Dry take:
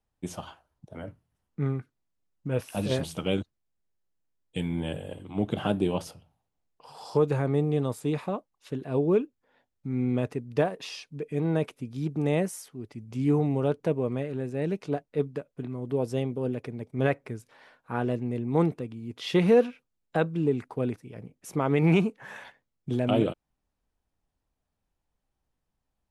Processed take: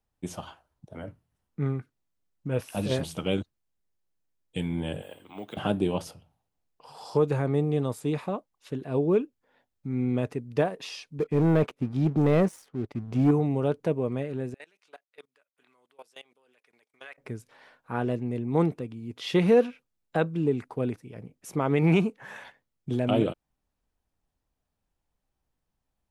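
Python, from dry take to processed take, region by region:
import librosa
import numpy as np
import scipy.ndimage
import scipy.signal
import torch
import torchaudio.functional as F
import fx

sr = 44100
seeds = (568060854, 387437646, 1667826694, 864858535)

y = fx.chain(x, sr, fx.highpass(hz=1200.0, slope=6),
    fx.resample_bad(factor=2, down='none', up='hold'),
    fx.band_squash(depth_pct=40), at=(5.02, 5.57))
y = fx.chain(y, sr, fx.lowpass(hz=1800.0, slope=6),
    fx.leveller(passes=2), at=(11.19, 13.31))
y = fx.chain(y, sr, fx.highpass(hz=1400.0, slope=12),
    fx.level_steps(step_db=22), at=(14.54, 17.18))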